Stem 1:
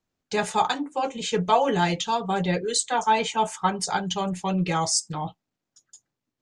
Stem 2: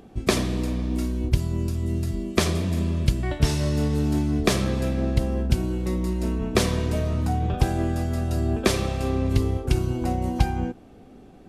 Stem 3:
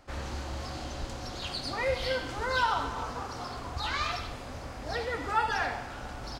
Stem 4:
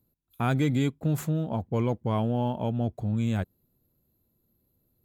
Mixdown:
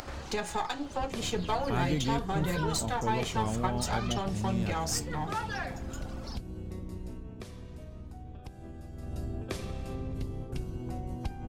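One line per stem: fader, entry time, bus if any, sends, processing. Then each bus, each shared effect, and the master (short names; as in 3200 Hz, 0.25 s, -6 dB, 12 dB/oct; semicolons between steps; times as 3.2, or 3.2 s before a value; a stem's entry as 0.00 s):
+1.5 dB, 0.00 s, bus A, no send, half-wave gain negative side -7 dB
7.05 s -7 dB -> 7.55 s -16.5 dB -> 8.9 s -16.5 dB -> 9.13 s -4 dB, 0.85 s, no bus, no send, octaver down 1 oct, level +1 dB; compressor 2.5:1, threshold -35 dBFS, peak gain reduction 16.5 dB
-3.0 dB, 0.00 s, bus A, no send, reverb removal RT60 1.3 s; upward compressor, threshold -36 dBFS
-6.5 dB, 1.30 s, no bus, no send, dry
bus A: 0.0 dB, de-hum 165.9 Hz, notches 28; compressor 2.5:1, threshold -32 dBFS, peak gain reduction 11.5 dB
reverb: off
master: upward compressor, threshold -37 dBFS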